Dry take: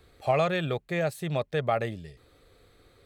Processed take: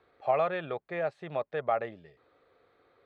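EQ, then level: band-pass filter 930 Hz, Q 0.8; distance through air 110 m; 0.0 dB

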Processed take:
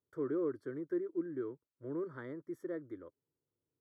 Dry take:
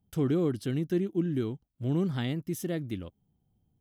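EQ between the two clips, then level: Savitzky-Golay filter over 41 samples; high-pass 250 Hz 12 dB/octave; static phaser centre 760 Hz, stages 6; -3.5 dB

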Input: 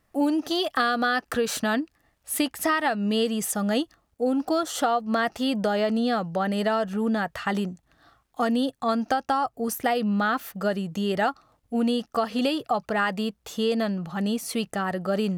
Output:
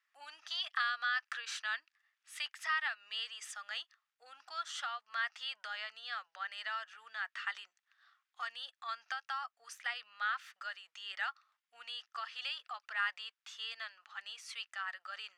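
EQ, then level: high-pass 1.4 kHz 24 dB/octave; distance through air 120 m; band-stop 4.2 kHz, Q 23; -4.5 dB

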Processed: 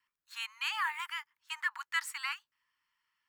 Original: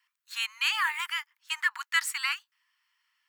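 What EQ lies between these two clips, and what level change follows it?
tilt shelf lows +9.5 dB, about 730 Hz; 0.0 dB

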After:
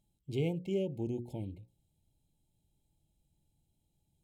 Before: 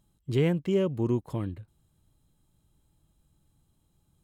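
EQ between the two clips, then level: brick-wall FIR band-stop 920–2100 Hz; hum notches 60/120/180/240/300/360/420/480/540 Hz; -7.5 dB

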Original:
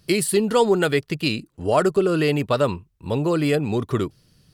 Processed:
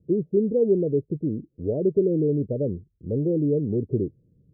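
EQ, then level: high-pass 42 Hz; steep low-pass 520 Hz 48 dB/octave; -1.5 dB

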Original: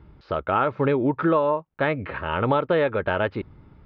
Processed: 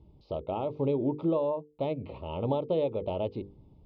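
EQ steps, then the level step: Butterworth band-stop 1.6 kHz, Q 0.67; distance through air 54 m; hum notches 50/100/150/200/250/300/350/400/450/500 Hz; -5.5 dB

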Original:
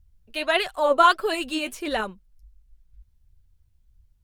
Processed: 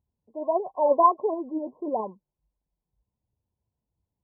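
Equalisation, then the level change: high-pass 220 Hz 12 dB/octave; brick-wall FIR low-pass 1.1 kHz; 0.0 dB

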